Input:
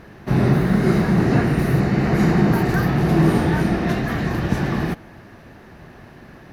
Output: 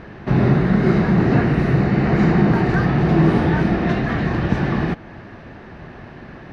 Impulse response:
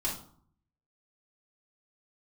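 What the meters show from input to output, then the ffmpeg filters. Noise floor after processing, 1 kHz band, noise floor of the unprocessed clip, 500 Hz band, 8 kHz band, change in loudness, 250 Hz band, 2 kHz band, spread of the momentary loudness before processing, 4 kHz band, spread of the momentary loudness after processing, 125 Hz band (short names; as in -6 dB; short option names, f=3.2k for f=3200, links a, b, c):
-39 dBFS, +1.5 dB, -44 dBFS, +1.5 dB, n/a, +1.5 dB, +1.5 dB, +1.5 dB, 6 LU, -1.0 dB, 5 LU, +1.5 dB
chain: -filter_complex "[0:a]lowpass=3.8k,asplit=2[a][b];[b]acompressor=threshold=-29dB:ratio=6,volume=-2dB[c];[a][c]amix=inputs=2:normalize=0"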